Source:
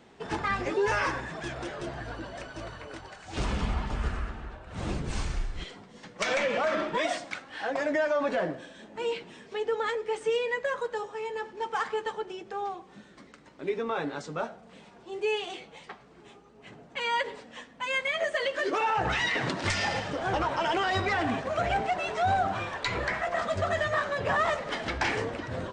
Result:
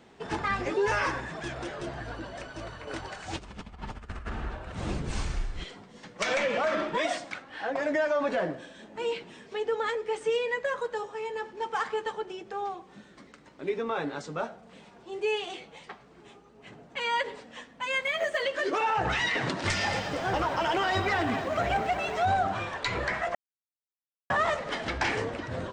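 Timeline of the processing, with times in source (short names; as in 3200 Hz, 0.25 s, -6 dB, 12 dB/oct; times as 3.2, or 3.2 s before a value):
2.87–4.72 negative-ratio compressor -36 dBFS, ratio -0.5
7.32–7.83 high shelf 4300 Hz -7.5 dB
18.02–18.42 companded quantiser 8-bit
19.46–22.25 lo-fi delay 0.231 s, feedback 55%, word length 9-bit, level -11 dB
23.35–24.3 mute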